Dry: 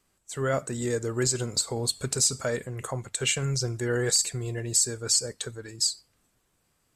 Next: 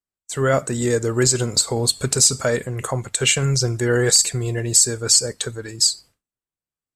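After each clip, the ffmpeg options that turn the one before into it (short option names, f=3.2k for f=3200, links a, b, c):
-af "agate=range=-33dB:threshold=-47dB:ratio=3:detection=peak,volume=8.5dB"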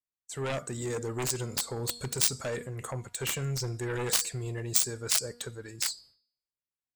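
-af "bandreject=f=239.3:t=h:w=4,bandreject=f=478.6:t=h:w=4,bandreject=f=717.9:t=h:w=4,bandreject=f=957.2:t=h:w=4,bandreject=f=1.1965k:t=h:w=4,bandreject=f=1.4358k:t=h:w=4,bandreject=f=1.6751k:t=h:w=4,bandreject=f=1.9144k:t=h:w=4,bandreject=f=2.1537k:t=h:w=4,bandreject=f=2.393k:t=h:w=4,bandreject=f=2.6323k:t=h:w=4,bandreject=f=2.8716k:t=h:w=4,bandreject=f=3.1109k:t=h:w=4,bandreject=f=3.3502k:t=h:w=4,bandreject=f=3.5895k:t=h:w=4,bandreject=f=3.8288k:t=h:w=4,bandreject=f=4.0681k:t=h:w=4,bandreject=f=4.3074k:t=h:w=4,bandreject=f=4.5467k:t=h:w=4,bandreject=f=4.786k:t=h:w=4,bandreject=f=5.0253k:t=h:w=4,bandreject=f=5.2646k:t=h:w=4,bandreject=f=5.5039k:t=h:w=4,aeval=exprs='0.794*(cos(1*acos(clip(val(0)/0.794,-1,1)))-cos(1*PI/2))+0.355*(cos(3*acos(clip(val(0)/0.794,-1,1)))-cos(3*PI/2))':c=same,volume=-1.5dB"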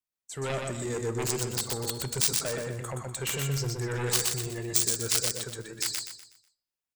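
-af "aecho=1:1:123|246|369|492|615:0.668|0.241|0.0866|0.0312|0.0112"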